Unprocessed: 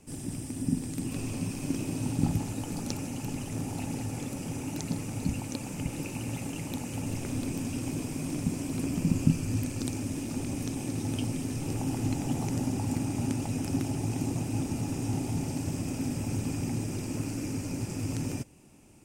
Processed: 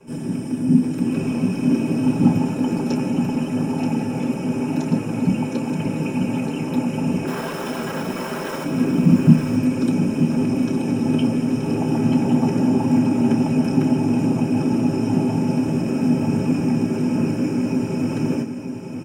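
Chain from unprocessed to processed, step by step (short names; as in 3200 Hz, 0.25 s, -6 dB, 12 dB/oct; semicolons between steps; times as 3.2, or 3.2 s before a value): 7.27–8.64 wrapped overs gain 32 dB; feedback echo 0.929 s, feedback 26%, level -8 dB; reverb RT60 0.15 s, pre-delay 3 ms, DRR -9.5 dB; gain -7.5 dB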